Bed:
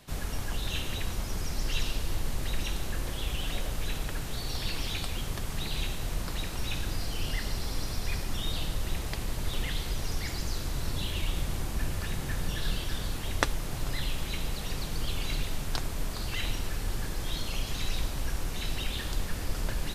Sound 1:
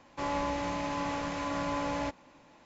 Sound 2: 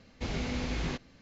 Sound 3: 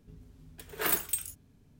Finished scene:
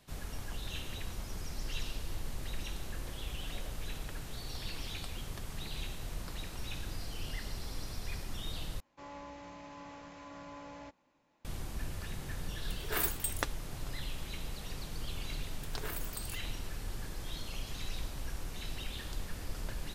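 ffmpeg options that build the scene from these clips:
-filter_complex "[3:a]asplit=2[a][b];[0:a]volume=-8dB[c];[a]asoftclip=type=tanh:threshold=-19dB[d];[b]acompressor=threshold=-35dB:ratio=6:attack=3.2:release=140:knee=1:detection=peak[e];[c]asplit=2[f][g];[f]atrim=end=8.804[h];[1:a]atrim=end=2.65,asetpts=PTS-STARTPTS,volume=-15.5dB[i];[g]atrim=start=11.446[j];[d]atrim=end=1.79,asetpts=PTS-STARTPTS,volume=-3dB,afade=t=in:d=0.004:c=hsin,afade=t=out:st=1.786:d=0.004:c=hsin,adelay=12110[k];[e]atrim=end=1.79,asetpts=PTS-STARTPTS,volume=-3.5dB,afade=t=in:d=0.004:c=hsin,afade=t=out:st=1.786:d=0.004:c=hsin,adelay=15040[l];[h][i]acrossfade=d=0.004:c1=hsin:c2=hsin[m];[m][j]acrossfade=d=0.004:c1=hsin:c2=hsin[n];[n][k][l]amix=inputs=3:normalize=0"

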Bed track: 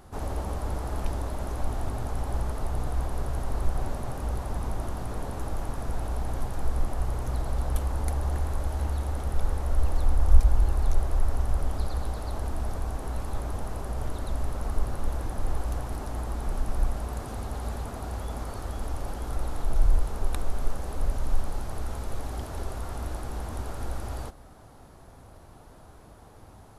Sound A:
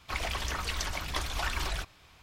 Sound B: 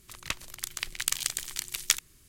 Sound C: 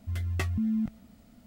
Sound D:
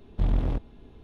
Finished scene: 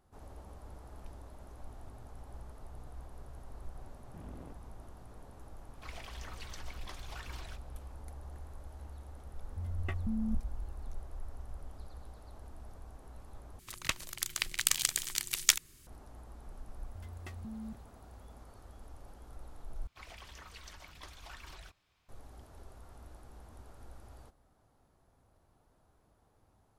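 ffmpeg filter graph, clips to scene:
-filter_complex "[1:a]asplit=2[a][b];[3:a]asplit=2[c][d];[0:a]volume=-19dB[e];[4:a]highpass=140,lowpass=2.4k[f];[c]afwtdn=0.01[g];[e]asplit=3[h][i][j];[h]atrim=end=13.594[k];[2:a]atrim=end=2.28[l];[i]atrim=start=15.866:end=19.874[m];[b]atrim=end=2.22,asetpts=PTS-STARTPTS,volume=-17.5dB[n];[j]atrim=start=22.086[o];[f]atrim=end=1.03,asetpts=PTS-STARTPTS,volume=-17dB,afade=t=in:d=0.004:c=hsin,afade=t=out:st=1.026:d=0.004:c=hsin,adelay=3950[p];[a]atrim=end=2.22,asetpts=PTS-STARTPTS,volume=-15dB,afade=t=in:d=0.004:c=hsin,afade=t=out:st=2.216:d=0.004:c=hsin,adelay=252693S[q];[g]atrim=end=1.46,asetpts=PTS-STARTPTS,volume=-7dB,afade=t=in:d=0.004:c=hsin,afade=t=out:st=1.456:d=0.004:c=hsin,adelay=9490[r];[d]atrim=end=1.46,asetpts=PTS-STARTPTS,volume=-16dB,afade=t=in:d=0.004:c=hsin,afade=t=out:st=1.456:d=0.004:c=hsin,adelay=16870[s];[k][l]acrossfade=d=0.004:c1=hsin:c2=hsin[t];[t][m]acrossfade=d=0.004:c1=hsin:c2=hsin[u];[u][n]acrossfade=d=0.004:c1=hsin:c2=hsin[v];[v][o]acrossfade=d=0.004:c1=hsin:c2=hsin[w];[w][p][q][r][s]amix=inputs=5:normalize=0"

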